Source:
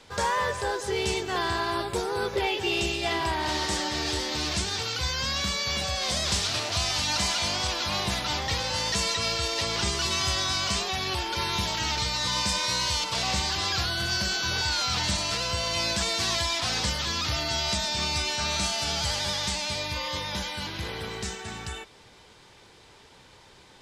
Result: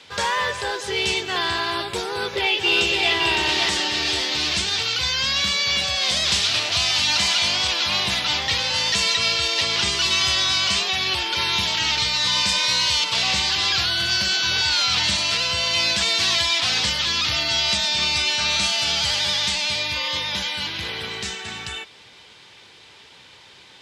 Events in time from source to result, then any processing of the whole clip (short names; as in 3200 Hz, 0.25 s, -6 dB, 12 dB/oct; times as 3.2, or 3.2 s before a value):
2.08–3.13 echo throw 0.56 s, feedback 35%, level -3.5 dB
whole clip: HPF 78 Hz; bell 3000 Hz +10.5 dB 1.8 oct